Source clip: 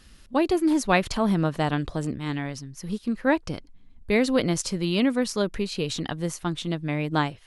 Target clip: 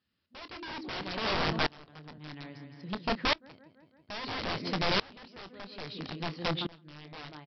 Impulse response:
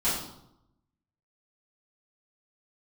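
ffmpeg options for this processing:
-filter_complex "[0:a]asplit=2[a][b];[b]aecho=0:1:165|330|495|660|825:0.316|0.158|0.0791|0.0395|0.0198[c];[a][c]amix=inputs=2:normalize=0,volume=16dB,asoftclip=hard,volume=-16dB,highpass=f=88:w=0.5412,highpass=f=88:w=1.3066,aresample=11025,aeval=exprs='(mod(10.6*val(0)+1,2)-1)/10.6':c=same,aresample=44100,asplit=2[d][e];[e]adelay=26,volume=-13dB[f];[d][f]amix=inputs=2:normalize=0,aeval=exprs='val(0)*pow(10,-27*if(lt(mod(-0.6*n/s,1),2*abs(-0.6)/1000),1-mod(-0.6*n/s,1)/(2*abs(-0.6)/1000),(mod(-0.6*n/s,1)-2*abs(-0.6)/1000)/(1-2*abs(-0.6)/1000))/20)':c=same"

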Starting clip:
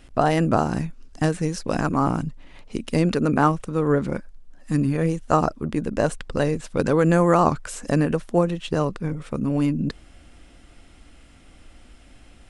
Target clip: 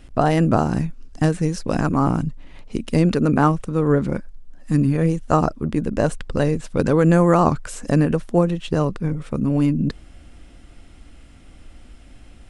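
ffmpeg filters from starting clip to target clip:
-af "lowshelf=f=310:g=5.5"

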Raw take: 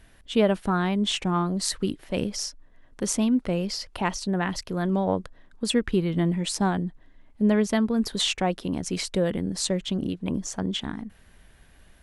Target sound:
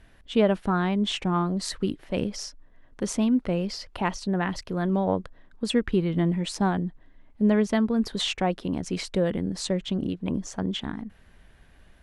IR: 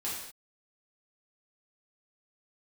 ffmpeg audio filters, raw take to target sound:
-af "lowpass=f=3.7k:p=1"

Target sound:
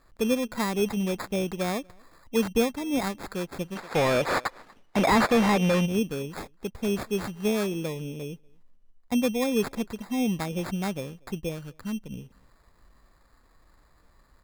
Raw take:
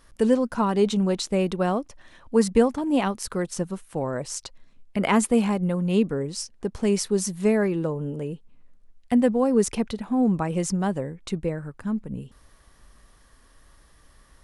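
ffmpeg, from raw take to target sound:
-filter_complex "[0:a]acrusher=samples=15:mix=1:aa=0.000001,asplit=2[a][b];[b]adelay=239.1,volume=-29dB,highshelf=f=4k:g=-5.38[c];[a][c]amix=inputs=2:normalize=0,asplit=3[d][e][f];[d]afade=t=out:st=3.75:d=0.02[g];[e]asplit=2[h][i];[i]highpass=f=720:p=1,volume=27dB,asoftclip=type=tanh:threshold=-8dB[j];[h][j]amix=inputs=2:normalize=0,lowpass=f=3.6k:p=1,volume=-6dB,afade=t=in:st=3.75:d=0.02,afade=t=out:st=5.85:d=0.02[k];[f]afade=t=in:st=5.85:d=0.02[l];[g][k][l]amix=inputs=3:normalize=0,volume=-5dB"

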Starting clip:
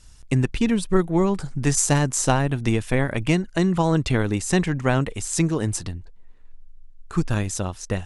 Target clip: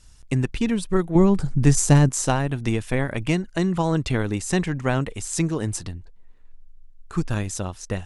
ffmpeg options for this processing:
-filter_complex "[0:a]asettb=1/sr,asplit=3[a][b][c];[a]atrim=end=1.154[d];[b]atrim=start=1.15:end=2.09,asetpts=PTS-STARTPTS,afade=t=in:d=0.004:c=qsin,afade=t=out:st=0.936:d=0.004:c=qsin,lowshelf=f=360:g=9.5[e];[c]atrim=start=2.086[f];[d][e]acrossfade=d=0.004:c1=hsin:c2=qsin[g];[g][f]acrossfade=d=0.004:c1=qsin:c2=hsin,volume=-2dB"

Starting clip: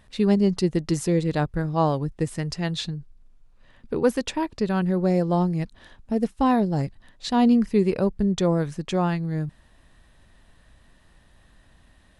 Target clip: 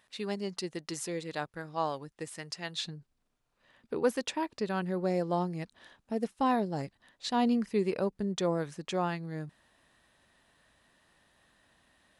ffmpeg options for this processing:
-af "asetnsamples=n=441:p=0,asendcmd='2.85 highpass f 380',highpass=f=1k:p=1,volume=-4.5dB"

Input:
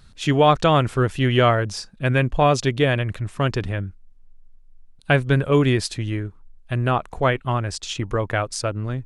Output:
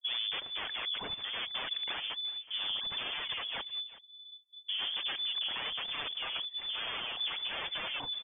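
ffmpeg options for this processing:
-af "areverse,agate=range=-57dB:threshold=-39dB:ratio=16:detection=peak,asubboost=boost=5.5:cutoff=130,acompressor=threshold=-21dB:ratio=2.5,tremolo=f=22:d=0.182,aresample=11025,aeval=exprs='0.0376*(abs(mod(val(0)/0.0376+3,4)-2)-1)':c=same,aresample=44100,atempo=1.1,aphaser=in_gain=1:out_gain=1:delay=4.8:decay=0.5:speed=1.1:type=triangular,asoftclip=type=tanh:threshold=-26.5dB,aecho=1:1:373:0.112,lowpass=f=3k:t=q:w=0.5098,lowpass=f=3k:t=q:w=0.6013,lowpass=f=3k:t=q:w=0.9,lowpass=f=3k:t=q:w=2.563,afreqshift=-3500,adynamicequalizer=threshold=0.00501:dfrequency=1500:dqfactor=0.7:tfrequency=1500:tqfactor=0.7:attack=5:release=100:ratio=0.375:range=2.5:mode=cutabove:tftype=highshelf"

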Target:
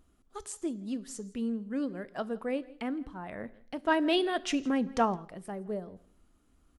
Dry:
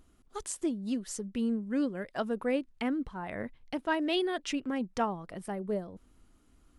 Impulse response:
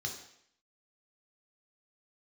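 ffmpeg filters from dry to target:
-filter_complex "[0:a]aecho=1:1:165:0.075,asplit=2[a][b];[1:a]atrim=start_sample=2205[c];[b][c]afir=irnorm=-1:irlink=0,volume=-14.5dB[d];[a][d]amix=inputs=2:normalize=0,asplit=3[e][f][g];[e]afade=t=out:st=3.84:d=0.02[h];[f]acontrast=61,afade=t=in:st=3.84:d=0.02,afade=t=out:st=5.15:d=0.02[i];[g]afade=t=in:st=5.15:d=0.02[j];[h][i][j]amix=inputs=3:normalize=0,volume=-3dB"

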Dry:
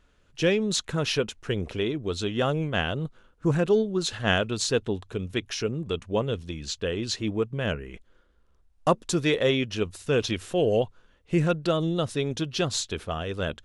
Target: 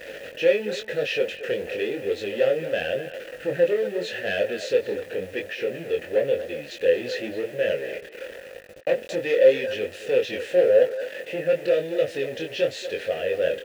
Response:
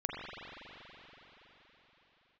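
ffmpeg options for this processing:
-filter_complex "[0:a]aeval=exprs='val(0)+0.5*0.0398*sgn(val(0))':c=same,asettb=1/sr,asplit=3[a][b][c];[a]atrim=end=4.814[d];[b]atrim=start=4.81:end=6.71,asetpts=PTS-STARTPTS,afade=t=in:d=0.004:c=qsin,afade=t=out:st=1.896:d=0.004:c=qsin,acrossover=split=3400[e][f];[f]acompressor=threshold=-40dB:ratio=4:attack=1:release=60[g];[e][g]amix=inputs=2:normalize=0[h];[c]atrim=start=6.706[i];[d][h]acrossfade=d=0.004:c1=hsin:c2=qsin[j];[j][i]acrossfade=d=0.004:c1=qsin:c2=hsin,asettb=1/sr,asplit=3[k][l][m];[k]atrim=end=10.844[n];[l]atrim=start=10.84:end=11.53,asetpts=PTS-STARTPTS,afade=t=in:d=0.004:c=qsin,afade=t=out:st=0.686:d=0.004:c=qsin,highpass=160[o];[m]atrim=start=11.526[p];[n][o]acrossfade=d=0.004:c1=hsin:c2=qsin[q];[q][p]acrossfade=d=0.004:c1=qsin:c2=hsin,acontrast=90,asoftclip=type=hard:threshold=-13dB,flanger=delay=20:depth=4.5:speed=0.92,asplit=3[r][s][t];[r]bandpass=f=530:t=q:w=8,volume=0dB[u];[s]bandpass=f=1.84k:t=q:w=8,volume=-6dB[v];[t]bandpass=f=2.48k:t=q:w=8,volume=-9dB[w];[u][v][w]amix=inputs=3:normalize=0,acrusher=bits=9:mix=0:aa=0.000001,asplit=2[x][y];[y]adelay=230,highpass=300,lowpass=3.4k,asoftclip=type=hard:threshold=-22.5dB,volume=-11dB[z];[x][z]amix=inputs=2:normalize=0,volume=7dB"

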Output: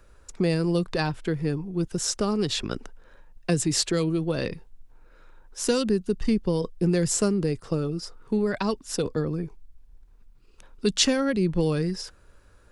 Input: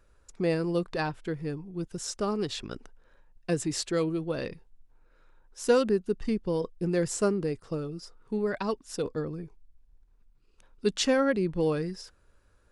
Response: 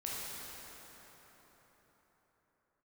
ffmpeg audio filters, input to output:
-filter_complex "[0:a]acrossover=split=210|3000[a][b][c];[b]acompressor=threshold=-34dB:ratio=4[d];[a][d][c]amix=inputs=3:normalize=0,volume=8.5dB"

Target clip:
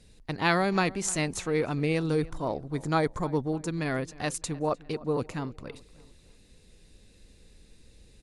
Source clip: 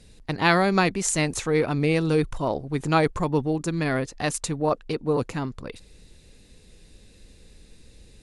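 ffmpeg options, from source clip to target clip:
-filter_complex "[0:a]asettb=1/sr,asplit=3[a][b][c];[a]atrim=end=2.114[d];[b]atrim=start=2.11:end=3.55,asetpts=PTS-STARTPTS,afade=t=in:d=0.004:c=qsin,afade=t=out:st=1.436:d=0.004:c=qsin,equalizer=f=2.7k:t=o:w=0.25:g=-12[e];[c]atrim=start=3.546[f];[d][e]acrossfade=d=0.004:c1=hsin:c2=qsin[g];[g][f]acrossfade=d=0.004:c1=qsin:c2=hsin,asplit=2[h][i];[i]adelay=303,lowpass=f=2.8k:p=1,volume=-20dB,asplit=2[j][k];[k]adelay=303,lowpass=f=2.8k:p=1,volume=0.41,asplit=2[l][m];[m]adelay=303,lowpass=f=2.8k:p=1,volume=0.41[n];[h][j][l][n]amix=inputs=4:normalize=0,volume=-5dB"

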